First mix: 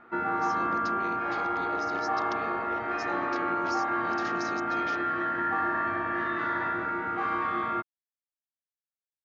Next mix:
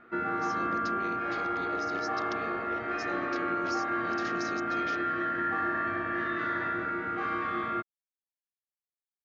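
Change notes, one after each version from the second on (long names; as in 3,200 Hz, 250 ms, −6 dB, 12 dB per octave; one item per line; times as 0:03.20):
master: add parametric band 900 Hz −12 dB 0.43 octaves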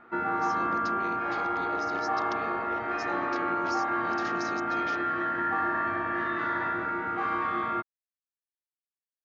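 master: add parametric band 900 Hz +12 dB 0.43 octaves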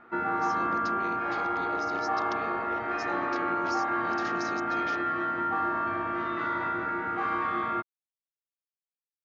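second sound: muted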